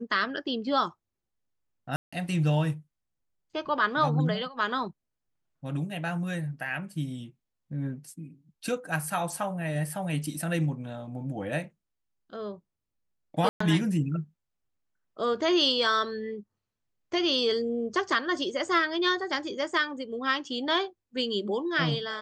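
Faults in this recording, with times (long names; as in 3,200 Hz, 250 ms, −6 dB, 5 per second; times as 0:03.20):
0:01.96–0:02.12: drop-out 165 ms
0:13.49–0:13.60: drop-out 114 ms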